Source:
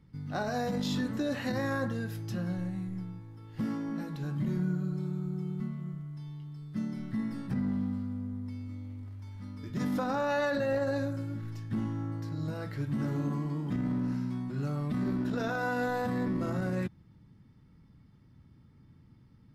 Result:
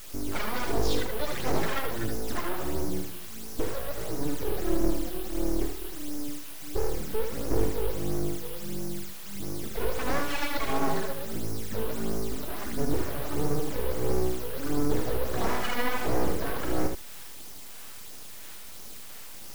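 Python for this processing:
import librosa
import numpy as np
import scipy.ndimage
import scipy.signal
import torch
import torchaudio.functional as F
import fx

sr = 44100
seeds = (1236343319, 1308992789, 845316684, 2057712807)

p1 = fx.spec_box(x, sr, start_s=2.19, length_s=0.64, low_hz=420.0, high_hz=1600.0, gain_db=10)
p2 = fx.notch(p1, sr, hz=570.0, q=15.0)
p3 = fx.quant_dither(p2, sr, seeds[0], bits=6, dither='triangular')
p4 = p2 + (p3 * librosa.db_to_amplitude(-9.0))
p5 = fx.phaser_stages(p4, sr, stages=12, low_hz=100.0, high_hz=3400.0, hz=1.5, feedback_pct=45)
p6 = np.abs(p5)
p7 = p6 + fx.echo_single(p6, sr, ms=75, db=-6.0, dry=0)
y = p7 * librosa.db_to_amplitude(4.0)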